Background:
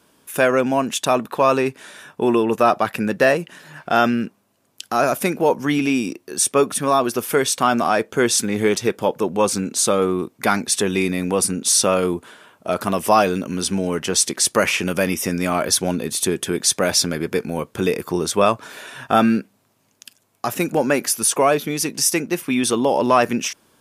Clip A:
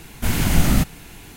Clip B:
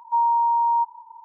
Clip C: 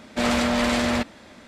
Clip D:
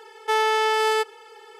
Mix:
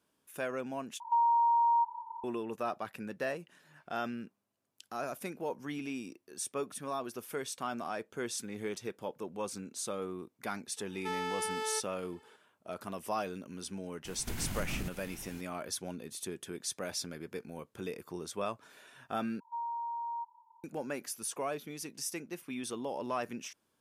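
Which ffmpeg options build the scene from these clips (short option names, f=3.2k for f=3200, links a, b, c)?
-filter_complex "[2:a]asplit=2[a][b];[0:a]volume=-20dB[c];[a]acompressor=threshold=-25dB:ratio=6:attack=3.2:release=140:knee=1:detection=peak[d];[1:a]acompressor=threshold=-24dB:ratio=6:attack=3.2:release=140:knee=1:detection=peak[e];[c]asplit=3[f][g][h];[f]atrim=end=1.004[i];[d]atrim=end=1.24[j];[g]atrim=start=2.236:end=19.404[k];[b]atrim=end=1.24,asetpts=PTS-STARTPTS,volume=-18dB[l];[h]atrim=start=20.636[m];[4:a]atrim=end=1.59,asetpts=PTS-STARTPTS,volume=-15.5dB,afade=t=in:d=0.004:c=hsin,afade=t=out:st=1.586:d=0.004:c=hsin,adelay=10770[n];[e]atrim=end=1.36,asetpts=PTS-STARTPTS,volume=-9.5dB,afade=t=in:d=0.004:c=hsin,afade=t=out:st=1.356:d=0.004:c=hsin,adelay=14050[o];[i][j]acrossfade=d=0.004:c1=hsin:c2=hsin[p];[p][k]acrossfade=d=0.004:c1=hsin:c2=hsin[q];[q][l]acrossfade=d=0.004:c1=hsin:c2=hsin[r];[r][m]acrossfade=d=0.004:c1=hsin:c2=hsin[s];[s][n][o]amix=inputs=3:normalize=0"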